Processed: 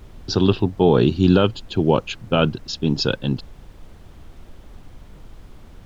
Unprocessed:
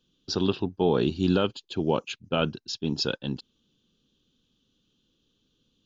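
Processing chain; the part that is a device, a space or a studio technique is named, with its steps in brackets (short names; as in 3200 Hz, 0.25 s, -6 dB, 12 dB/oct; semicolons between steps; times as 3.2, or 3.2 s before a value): car interior (bell 110 Hz +8 dB 0.62 oct; high shelf 4400 Hz -5.5 dB; brown noise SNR 18 dB); gain +7.5 dB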